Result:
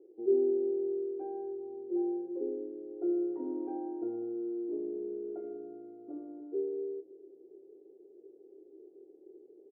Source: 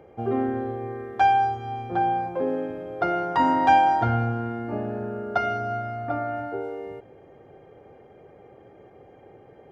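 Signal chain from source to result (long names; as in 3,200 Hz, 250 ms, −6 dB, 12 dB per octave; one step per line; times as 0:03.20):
flat-topped band-pass 360 Hz, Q 3.7
double-tracking delay 28 ms −8.5 dB
convolution reverb RT60 0.85 s, pre-delay 75 ms, DRR 19 dB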